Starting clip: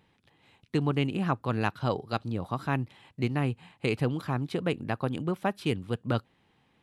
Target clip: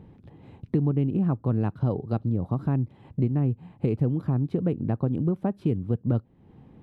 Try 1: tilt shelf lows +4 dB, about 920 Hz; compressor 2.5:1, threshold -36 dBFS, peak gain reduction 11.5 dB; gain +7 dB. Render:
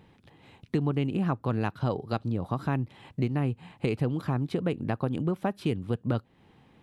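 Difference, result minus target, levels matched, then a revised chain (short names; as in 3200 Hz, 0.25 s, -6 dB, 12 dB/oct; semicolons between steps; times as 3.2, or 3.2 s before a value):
1000 Hz band +7.5 dB
tilt shelf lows +14.5 dB, about 920 Hz; compressor 2.5:1, threshold -36 dBFS, peak gain reduction 16.5 dB; gain +7 dB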